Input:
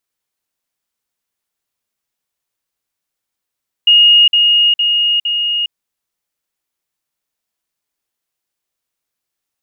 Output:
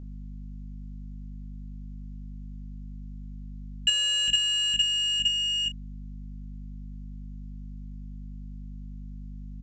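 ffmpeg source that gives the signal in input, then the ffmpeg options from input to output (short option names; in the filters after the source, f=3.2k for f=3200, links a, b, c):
-f lavfi -i "aevalsrc='pow(10,(-4.5-3*floor(t/0.46))/20)*sin(2*PI*2860*t)*clip(min(mod(t,0.46),0.41-mod(t,0.46))/0.005,0,1)':d=1.84:s=44100"
-af "aeval=exprs='val(0)+0.0112*(sin(2*PI*50*n/s)+sin(2*PI*2*50*n/s)/2+sin(2*PI*3*50*n/s)/3+sin(2*PI*4*50*n/s)/4+sin(2*PI*5*50*n/s)/5)':c=same,aresample=16000,asoftclip=type=tanh:threshold=-18dB,aresample=44100,aecho=1:1:25|59:0.501|0.126"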